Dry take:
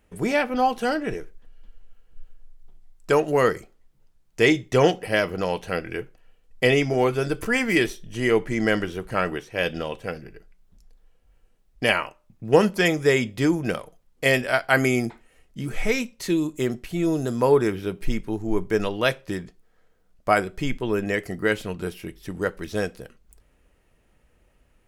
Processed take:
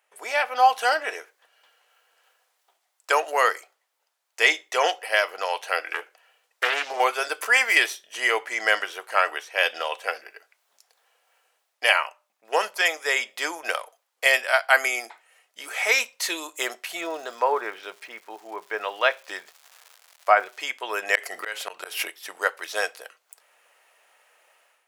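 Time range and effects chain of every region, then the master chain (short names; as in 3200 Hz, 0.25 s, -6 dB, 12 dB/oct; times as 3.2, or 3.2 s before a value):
5.92–7 compressor 2:1, threshold -27 dBFS + Doppler distortion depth 0.39 ms
17–20.59 low shelf 160 Hz +8 dB + treble ducked by the level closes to 2000 Hz, closed at -14.5 dBFS + crackle 370/s -43 dBFS
21.15–22.08 flipped gate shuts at -19 dBFS, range -34 dB + hard clip -23 dBFS + fast leveller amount 70%
whole clip: AGC; HPF 660 Hz 24 dB/oct; gain -1 dB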